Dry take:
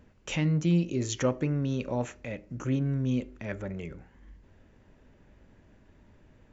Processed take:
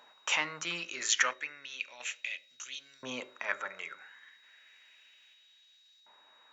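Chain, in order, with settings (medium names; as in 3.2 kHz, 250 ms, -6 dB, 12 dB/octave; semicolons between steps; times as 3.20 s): LFO high-pass saw up 0.33 Hz 870–4400 Hz; on a send at -22.5 dB: reverberation RT60 0.75 s, pre-delay 7 ms; on the sum: random-step tremolo 1.5 Hz; whistle 3.8 kHz -69 dBFS; de-hum 54.07 Hz, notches 11; trim +7.5 dB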